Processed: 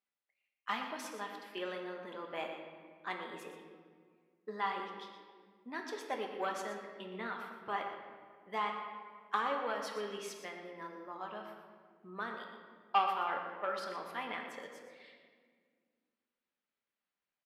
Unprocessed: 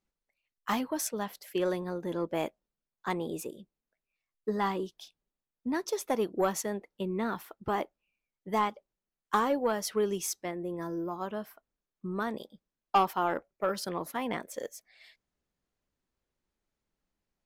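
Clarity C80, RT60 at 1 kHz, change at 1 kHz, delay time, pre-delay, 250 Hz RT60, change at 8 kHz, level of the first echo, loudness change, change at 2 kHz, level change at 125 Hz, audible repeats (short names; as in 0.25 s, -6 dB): 5.5 dB, 1.7 s, -4.5 dB, 0.12 s, 4 ms, 2.8 s, -15.0 dB, -10.5 dB, -7.0 dB, -1.5 dB, -16.0 dB, 1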